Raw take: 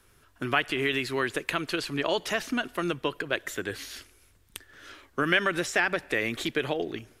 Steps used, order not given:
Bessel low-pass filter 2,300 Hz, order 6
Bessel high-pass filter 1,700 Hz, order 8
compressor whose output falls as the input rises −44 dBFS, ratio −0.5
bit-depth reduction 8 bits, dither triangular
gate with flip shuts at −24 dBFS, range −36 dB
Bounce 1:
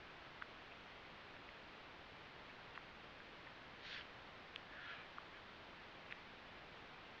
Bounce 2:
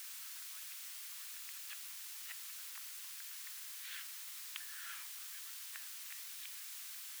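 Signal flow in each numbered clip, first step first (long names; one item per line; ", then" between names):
gate with flip, then Bessel high-pass filter, then bit-depth reduction, then Bessel low-pass filter, then compressor whose output falls as the input rises
Bessel low-pass filter, then gate with flip, then compressor whose output falls as the input rises, then bit-depth reduction, then Bessel high-pass filter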